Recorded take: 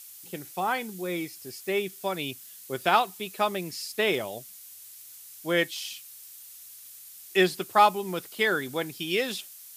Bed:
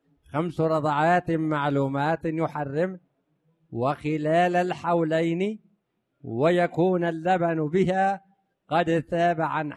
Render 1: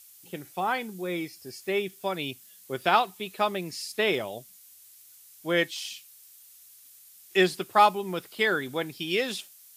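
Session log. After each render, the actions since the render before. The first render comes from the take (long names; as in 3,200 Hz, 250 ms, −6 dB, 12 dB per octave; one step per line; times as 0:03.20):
noise reduction from a noise print 6 dB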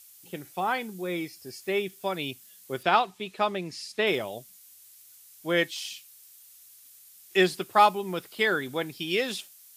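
0:02.83–0:04.07: high-frequency loss of the air 50 metres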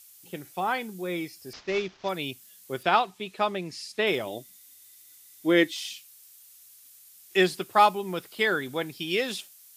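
0:01.53–0:02.09: variable-slope delta modulation 32 kbit/s
0:04.26–0:05.92: hollow resonant body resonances 310/2,000/3,600 Hz, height 12 dB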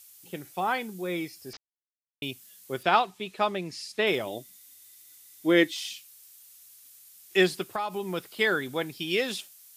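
0:01.57–0:02.22: silence
0:07.65–0:08.10: downward compressor 12 to 1, threshold −26 dBFS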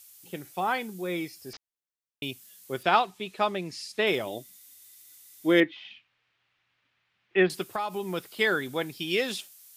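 0:05.60–0:07.50: low-pass filter 2,600 Hz 24 dB per octave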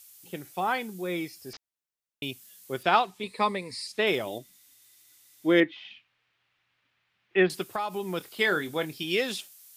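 0:03.23–0:03.87: EQ curve with evenly spaced ripples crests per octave 0.95, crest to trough 14 dB
0:04.38–0:05.69: high-shelf EQ 6,600 Hz −8 dB
0:08.18–0:09.04: double-tracking delay 26 ms −11 dB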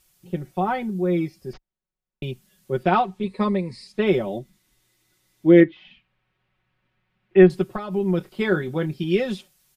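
spectral tilt −4 dB per octave
comb filter 5.4 ms, depth 75%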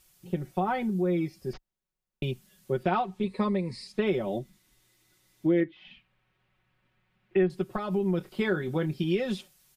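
downward compressor 3 to 1, threshold −25 dBFS, peak gain reduction 13 dB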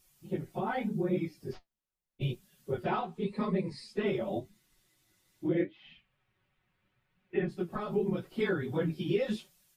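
random phases in long frames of 50 ms
flanger 0.83 Hz, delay 4.7 ms, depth 9.7 ms, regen +58%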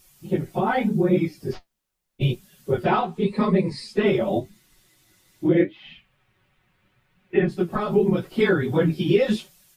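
level +11 dB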